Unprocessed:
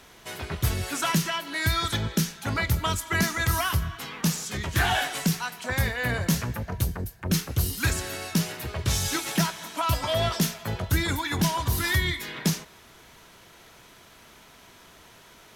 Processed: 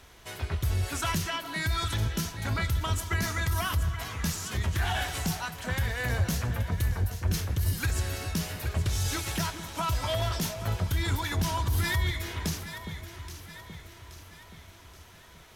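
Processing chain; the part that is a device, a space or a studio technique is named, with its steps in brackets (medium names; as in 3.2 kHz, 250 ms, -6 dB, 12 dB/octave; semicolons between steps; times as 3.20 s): car stereo with a boomy subwoofer (resonant low shelf 120 Hz +7.5 dB, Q 1.5; peak limiter -16.5 dBFS, peak gain reduction 10.5 dB); echo whose repeats swap between lows and highs 413 ms, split 1.1 kHz, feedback 70%, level -8 dB; trim -3.5 dB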